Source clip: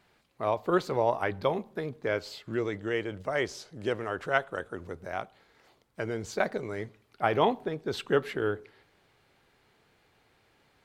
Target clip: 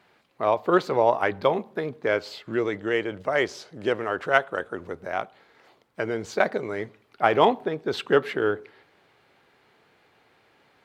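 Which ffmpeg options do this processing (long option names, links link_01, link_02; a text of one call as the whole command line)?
ffmpeg -i in.wav -filter_complex "[0:a]highpass=frequency=240:poles=1,asplit=2[link_01][link_02];[link_02]adynamicsmooth=sensitivity=4.5:basefreq=5100,volume=1.5dB[link_03];[link_01][link_03]amix=inputs=2:normalize=0" out.wav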